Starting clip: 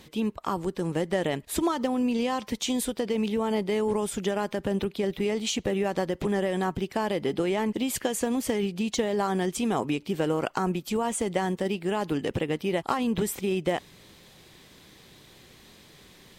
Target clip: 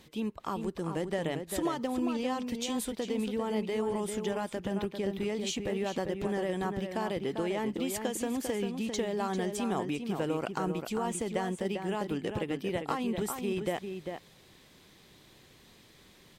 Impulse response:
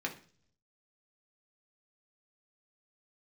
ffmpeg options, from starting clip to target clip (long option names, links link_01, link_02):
-filter_complex "[0:a]asplit=2[link_01][link_02];[link_02]adelay=396.5,volume=-6dB,highshelf=frequency=4000:gain=-8.92[link_03];[link_01][link_03]amix=inputs=2:normalize=0,volume=-6dB"